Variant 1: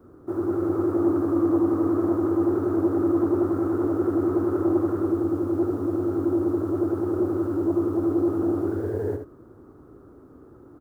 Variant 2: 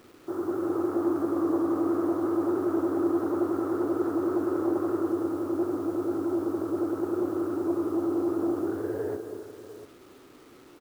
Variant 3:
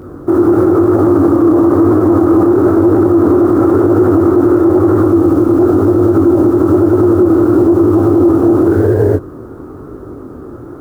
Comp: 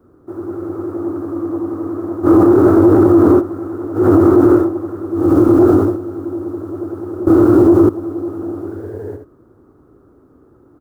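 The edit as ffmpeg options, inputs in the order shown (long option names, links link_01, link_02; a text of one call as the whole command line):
ffmpeg -i take0.wav -i take1.wav -i take2.wav -filter_complex "[2:a]asplit=4[link_01][link_02][link_03][link_04];[0:a]asplit=5[link_05][link_06][link_07][link_08][link_09];[link_05]atrim=end=2.27[link_10];[link_01]atrim=start=2.23:end=3.42[link_11];[link_06]atrim=start=3.38:end=4.09[link_12];[link_02]atrim=start=3.93:end=4.71[link_13];[link_07]atrim=start=4.55:end=5.35[link_14];[link_03]atrim=start=5.11:end=5.99[link_15];[link_08]atrim=start=5.75:end=7.272[link_16];[link_04]atrim=start=7.268:end=7.892[link_17];[link_09]atrim=start=7.888[link_18];[link_10][link_11]acrossfade=duration=0.04:curve1=tri:curve2=tri[link_19];[link_19][link_12]acrossfade=duration=0.04:curve1=tri:curve2=tri[link_20];[link_20][link_13]acrossfade=duration=0.16:curve1=tri:curve2=tri[link_21];[link_21][link_14]acrossfade=duration=0.16:curve1=tri:curve2=tri[link_22];[link_22][link_15]acrossfade=duration=0.24:curve1=tri:curve2=tri[link_23];[link_23][link_16]acrossfade=duration=0.24:curve1=tri:curve2=tri[link_24];[link_24][link_17]acrossfade=duration=0.004:curve1=hsin:curve2=hsin[link_25];[link_25][link_18]acrossfade=duration=0.004:curve1=hsin:curve2=hsin" out.wav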